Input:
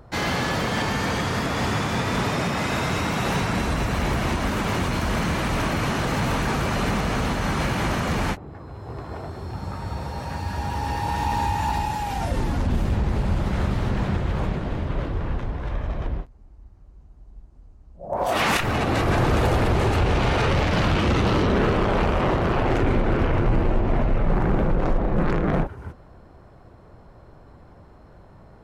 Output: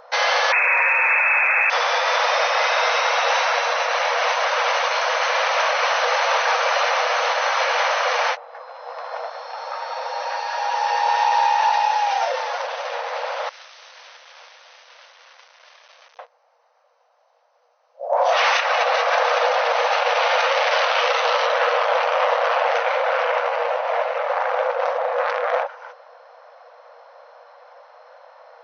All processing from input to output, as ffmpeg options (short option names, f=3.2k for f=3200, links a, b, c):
-filter_complex "[0:a]asettb=1/sr,asplit=3[a][b][c];[a]atrim=end=0.524[d];[b]atrim=start=0.52:end=1.7,asetpts=PTS-STARTPTS,afade=t=in:d=0.004:c=qsin,afade=t=out:st=1.176:d=0.004:c=qsin,lowpass=f=2.3k:t=q:w=0.5098,lowpass=f=2.3k:t=q:w=0.6013,lowpass=f=2.3k:t=q:w=0.9,lowpass=f=2.3k:t=q:w=2.563,afreqshift=-2700,acontrast=64[e];[c]atrim=start=1.696[f];[d][e]acrossfade=d=0.004:c1=hsin:c2=qsin[g];[g][f]acrossfade=d=0.004:c1=qsin:c2=hsin,asettb=1/sr,asplit=3[h][i][j];[h]atrim=end=13.494[k];[i]atrim=start=13.49:end=16.19,asetpts=PTS-STARTPTS,afade=t=in:d=0.004:c=qsin,afade=t=out:st=2.696:d=0.004:c=qsin,aderivative,acrusher=bits=6:dc=4:mix=0:aa=0.000001[l];[j]atrim=start=16.186[m];[k][l]acrossfade=d=0.004:c1=hsin:c2=qsin[n];[n][m]acrossfade=d=0.004:c1=qsin:c2=hsin,afftfilt=real='re*between(b*sr/4096,470,6300)':imag='im*between(b*sr/4096,470,6300)':win_size=4096:overlap=0.75,alimiter=limit=-18dB:level=0:latency=1:release=51,volume=8.5dB"